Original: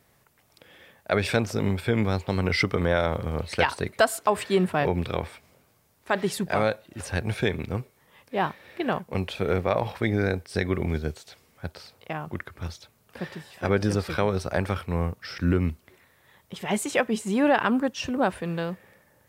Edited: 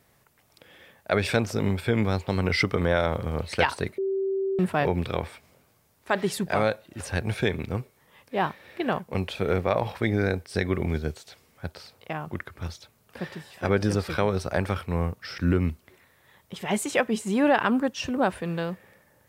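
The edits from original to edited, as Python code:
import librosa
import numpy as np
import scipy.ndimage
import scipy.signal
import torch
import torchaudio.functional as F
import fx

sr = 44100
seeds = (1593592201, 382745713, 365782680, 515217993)

y = fx.edit(x, sr, fx.bleep(start_s=3.98, length_s=0.61, hz=387.0, db=-23.5), tone=tone)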